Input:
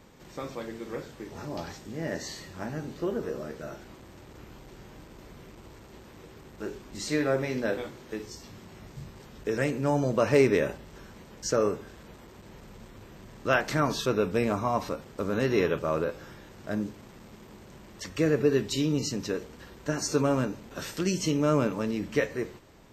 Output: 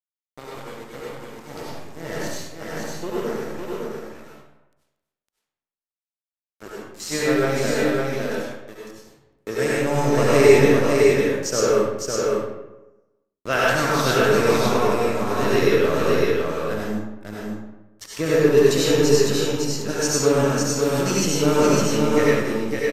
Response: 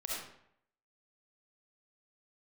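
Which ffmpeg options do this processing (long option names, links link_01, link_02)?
-filter_complex "[0:a]aemphasis=mode=production:type=cd,aeval=exprs='sgn(val(0))*max(abs(val(0))-0.0168,0)':channel_layout=same,aecho=1:1:557:0.668[link_01];[1:a]atrim=start_sample=2205,asetrate=30429,aresample=44100[link_02];[link_01][link_02]afir=irnorm=-1:irlink=0,aresample=32000,aresample=44100,volume=4dB"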